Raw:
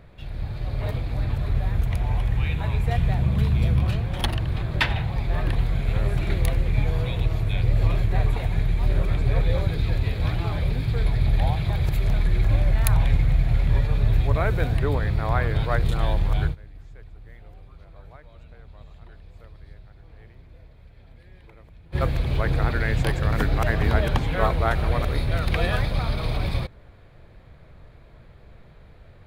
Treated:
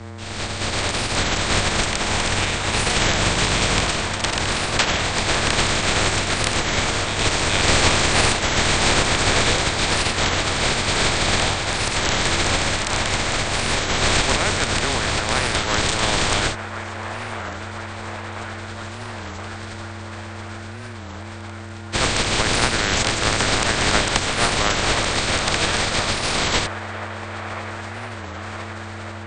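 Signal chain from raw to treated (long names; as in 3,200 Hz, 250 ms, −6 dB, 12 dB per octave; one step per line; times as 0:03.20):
compressing power law on the bin magnitudes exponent 0.3
automatic gain control gain up to 5.5 dB
pitch vibrato 12 Hz 29 cents
hum with harmonics 120 Hz, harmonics 19, −35 dBFS −6 dB per octave
frequency shifter −24 Hz
linear-phase brick-wall low-pass 8,800 Hz
on a send: delay with a band-pass on its return 1,024 ms, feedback 73%, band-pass 1,000 Hz, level −9 dB
on the sum: wow of a warped record 33 1/3 rpm, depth 160 cents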